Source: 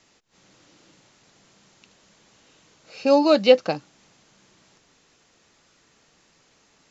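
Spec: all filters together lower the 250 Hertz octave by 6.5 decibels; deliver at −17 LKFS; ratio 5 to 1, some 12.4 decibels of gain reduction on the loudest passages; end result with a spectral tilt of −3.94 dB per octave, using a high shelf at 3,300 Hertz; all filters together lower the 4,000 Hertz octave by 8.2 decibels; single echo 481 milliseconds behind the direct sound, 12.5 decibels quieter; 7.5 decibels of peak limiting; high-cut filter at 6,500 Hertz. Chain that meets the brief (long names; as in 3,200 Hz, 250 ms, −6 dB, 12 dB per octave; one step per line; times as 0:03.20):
low-pass filter 6,500 Hz
parametric band 250 Hz −8 dB
high-shelf EQ 3,300 Hz −5.5 dB
parametric band 4,000 Hz −7 dB
downward compressor 5 to 1, threshold −24 dBFS
brickwall limiter −22 dBFS
single-tap delay 481 ms −12.5 dB
level +17 dB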